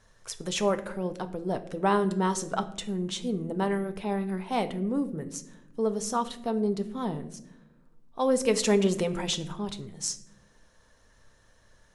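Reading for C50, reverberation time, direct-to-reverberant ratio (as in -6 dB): 14.5 dB, 0.85 s, 8.0 dB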